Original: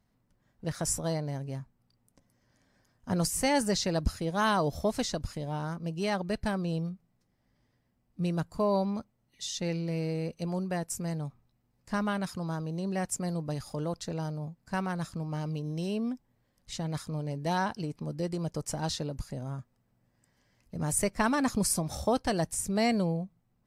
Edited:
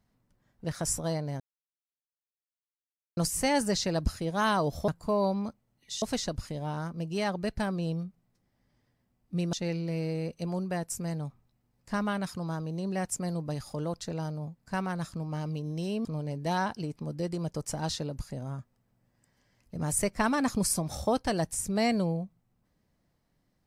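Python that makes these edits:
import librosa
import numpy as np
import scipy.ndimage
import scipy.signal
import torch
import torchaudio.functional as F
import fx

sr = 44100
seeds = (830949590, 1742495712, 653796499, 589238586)

y = fx.edit(x, sr, fx.silence(start_s=1.4, length_s=1.77),
    fx.move(start_s=8.39, length_s=1.14, to_s=4.88),
    fx.cut(start_s=16.05, length_s=1.0), tone=tone)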